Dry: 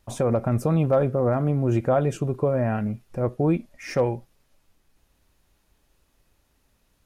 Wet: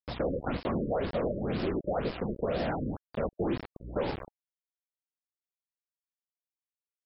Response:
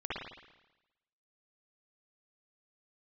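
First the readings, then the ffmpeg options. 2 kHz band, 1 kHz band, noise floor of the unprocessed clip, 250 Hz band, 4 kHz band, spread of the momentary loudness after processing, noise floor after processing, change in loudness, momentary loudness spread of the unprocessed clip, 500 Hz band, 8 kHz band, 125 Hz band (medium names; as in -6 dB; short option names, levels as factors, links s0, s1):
-3.5 dB, -6.5 dB, -68 dBFS, -8.0 dB, +1.5 dB, 5 LU, under -85 dBFS, -9.0 dB, 7 LU, -8.5 dB, under -35 dB, -14.0 dB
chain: -filter_complex "[0:a]afftfilt=real='hypot(re,im)*cos(2*PI*random(0))':imag='hypot(re,im)*sin(2*PI*random(1))':win_size=512:overlap=0.75,aeval=exprs='val(0)+0.00631*(sin(2*PI*60*n/s)+sin(2*PI*2*60*n/s)/2+sin(2*PI*3*60*n/s)/3+sin(2*PI*4*60*n/s)/4+sin(2*PI*5*60*n/s)/5)':c=same,asplit=2[s0][s1];[s1]acompressor=threshold=0.02:ratio=16,volume=0.794[s2];[s0][s2]amix=inputs=2:normalize=0,aecho=1:1:215:0.1,adynamicequalizer=threshold=0.00282:dfrequency=1300:dqfactor=2.9:tfrequency=1300:tqfactor=2.9:attack=5:release=100:ratio=0.375:range=1.5:mode=boostabove:tftype=bell,anlmdn=0.00631,acrusher=bits=5:mode=log:mix=0:aa=0.000001,acrossover=split=97|200[s3][s4][s5];[s3]acompressor=threshold=0.00891:ratio=4[s6];[s4]acompressor=threshold=0.00562:ratio=4[s7];[s5]acompressor=threshold=0.0501:ratio=4[s8];[s6][s7][s8]amix=inputs=3:normalize=0,agate=range=0.126:threshold=0.0112:ratio=16:detection=peak,asoftclip=type=tanh:threshold=0.0944,acrusher=bits=5:mix=0:aa=0.000001,afftfilt=real='re*lt(b*sr/1024,560*pow(5500/560,0.5+0.5*sin(2*PI*2*pts/sr)))':imag='im*lt(b*sr/1024,560*pow(5500/560,0.5+0.5*sin(2*PI*2*pts/sr)))':win_size=1024:overlap=0.75"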